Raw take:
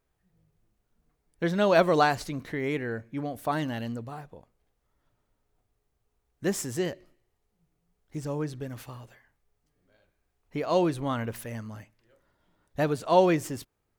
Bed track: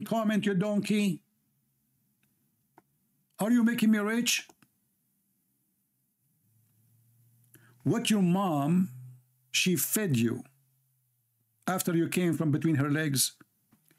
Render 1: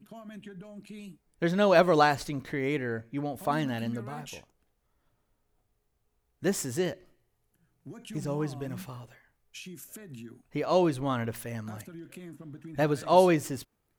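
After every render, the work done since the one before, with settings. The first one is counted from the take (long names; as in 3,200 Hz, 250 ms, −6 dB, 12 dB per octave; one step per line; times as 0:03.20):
mix in bed track −17.5 dB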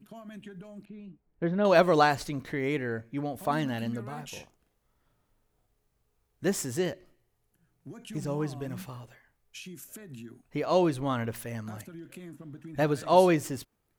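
0:00.85–0:01.65: head-to-tape spacing loss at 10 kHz 43 dB
0:04.29–0:06.46: double-tracking delay 40 ms −2.5 dB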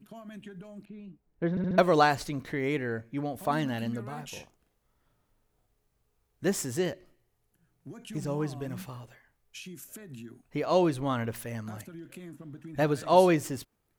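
0:01.50: stutter in place 0.07 s, 4 plays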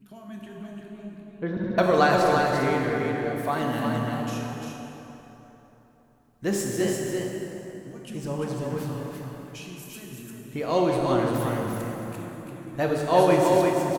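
single-tap delay 345 ms −4.5 dB
dense smooth reverb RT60 3.6 s, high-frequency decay 0.6×, DRR −0.5 dB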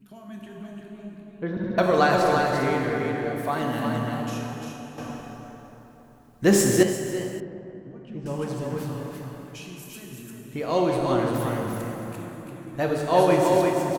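0:04.98–0:06.83: clip gain +8.5 dB
0:07.40–0:08.26: head-to-tape spacing loss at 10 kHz 37 dB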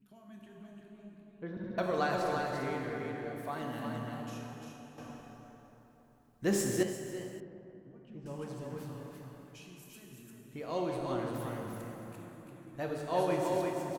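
level −12 dB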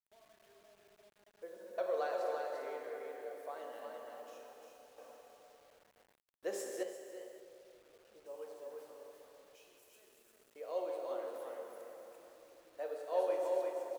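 four-pole ladder high-pass 460 Hz, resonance 65%
bit reduction 11 bits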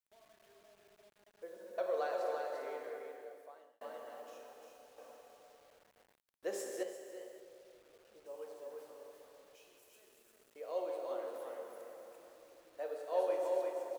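0:02.86–0:03.81: fade out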